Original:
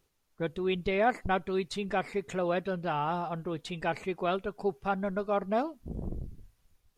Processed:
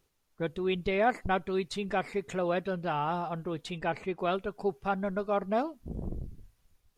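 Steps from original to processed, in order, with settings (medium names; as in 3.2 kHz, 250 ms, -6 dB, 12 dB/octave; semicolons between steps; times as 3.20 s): 3.78–4.19 s: treble shelf 4.8 kHz -9 dB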